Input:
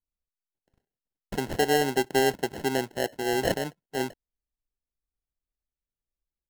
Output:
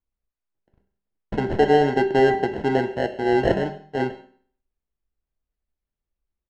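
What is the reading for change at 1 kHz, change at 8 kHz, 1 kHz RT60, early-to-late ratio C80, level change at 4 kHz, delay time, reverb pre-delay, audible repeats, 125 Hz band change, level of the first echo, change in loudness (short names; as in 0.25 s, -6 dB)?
+6.5 dB, under -10 dB, 0.55 s, 14.0 dB, -3.0 dB, 0.137 s, 5 ms, 1, +7.5 dB, -22.0 dB, +6.0 dB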